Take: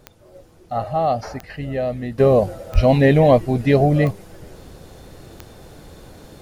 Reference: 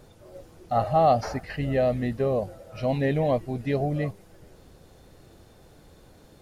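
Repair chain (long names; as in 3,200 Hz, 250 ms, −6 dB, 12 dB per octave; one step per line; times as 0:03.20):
click removal
0:02.18: level correction −11 dB
0:02.74–0:02.86: high-pass filter 140 Hz 24 dB per octave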